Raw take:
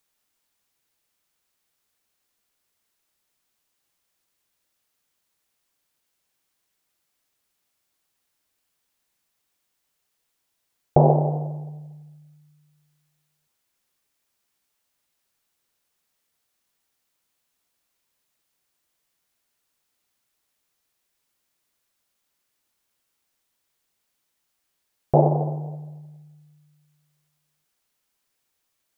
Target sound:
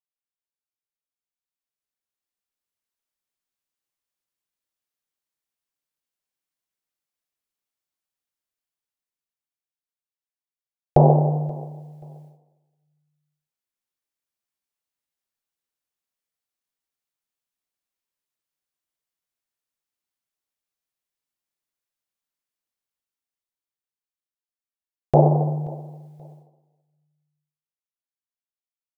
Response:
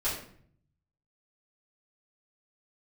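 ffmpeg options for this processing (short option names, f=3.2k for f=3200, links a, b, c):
-filter_complex "[0:a]agate=range=-26dB:threshold=-52dB:ratio=16:detection=peak,dynaudnorm=f=190:g=21:m=13dB,aecho=1:1:530|1060:0.0708|0.0198,asplit=2[a][b];[1:a]atrim=start_sample=2205,asetrate=74970,aresample=44100[c];[b][c]afir=irnorm=-1:irlink=0,volume=-22dB[d];[a][d]amix=inputs=2:normalize=0,volume=-1dB"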